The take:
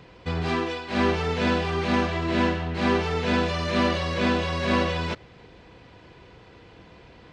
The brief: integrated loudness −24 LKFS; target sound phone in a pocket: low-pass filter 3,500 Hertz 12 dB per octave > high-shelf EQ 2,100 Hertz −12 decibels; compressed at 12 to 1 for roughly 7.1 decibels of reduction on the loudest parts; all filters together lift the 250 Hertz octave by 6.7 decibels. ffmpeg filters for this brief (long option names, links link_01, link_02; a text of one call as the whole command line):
ffmpeg -i in.wav -af "equalizer=frequency=250:width_type=o:gain=8,acompressor=threshold=-20dB:ratio=12,lowpass=3500,highshelf=frequency=2100:gain=-12,volume=2.5dB" out.wav